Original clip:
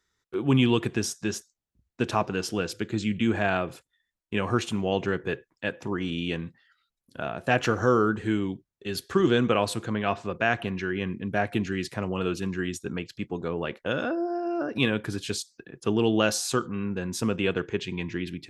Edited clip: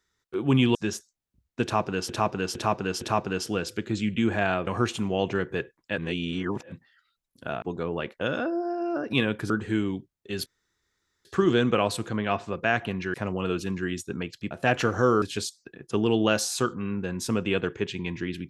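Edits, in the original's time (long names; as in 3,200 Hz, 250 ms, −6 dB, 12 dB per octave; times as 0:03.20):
0:00.75–0:01.16: remove
0:02.04–0:02.50: repeat, 4 plays
0:03.70–0:04.40: remove
0:05.71–0:06.45: reverse
0:07.35–0:08.06: swap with 0:13.27–0:15.15
0:09.02: splice in room tone 0.79 s
0:10.91–0:11.90: remove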